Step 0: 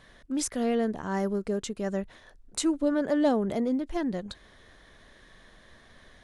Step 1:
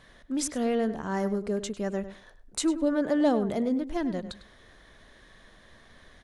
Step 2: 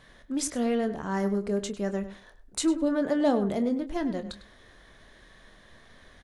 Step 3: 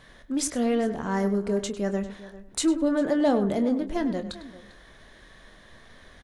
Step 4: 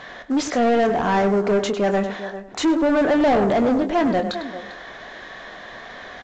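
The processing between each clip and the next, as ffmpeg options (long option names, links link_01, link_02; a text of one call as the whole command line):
ffmpeg -i in.wav -filter_complex "[0:a]asplit=2[link_01][link_02];[link_02]adelay=101,lowpass=frequency=3600:poles=1,volume=-12dB,asplit=2[link_03][link_04];[link_04]adelay=101,lowpass=frequency=3600:poles=1,volume=0.15[link_05];[link_01][link_03][link_05]amix=inputs=3:normalize=0" out.wav
ffmpeg -i in.wav -filter_complex "[0:a]asplit=2[link_01][link_02];[link_02]adelay=25,volume=-10.5dB[link_03];[link_01][link_03]amix=inputs=2:normalize=0" out.wav
ffmpeg -i in.wav -filter_complex "[0:a]asplit=2[link_01][link_02];[link_02]asoftclip=type=tanh:threshold=-22.5dB,volume=-8dB[link_03];[link_01][link_03]amix=inputs=2:normalize=0,asplit=2[link_04][link_05];[link_05]adelay=396.5,volume=-17dB,highshelf=frequency=4000:gain=-8.92[link_06];[link_04][link_06]amix=inputs=2:normalize=0" out.wav
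ffmpeg -i in.wav -filter_complex "[0:a]equalizer=frequency=730:width=7.4:gain=7.5,asplit=2[link_01][link_02];[link_02]highpass=frequency=720:poles=1,volume=25dB,asoftclip=type=tanh:threshold=-10dB[link_03];[link_01][link_03]amix=inputs=2:normalize=0,lowpass=frequency=1800:poles=1,volume=-6dB" -ar 16000 -c:a pcm_alaw out.wav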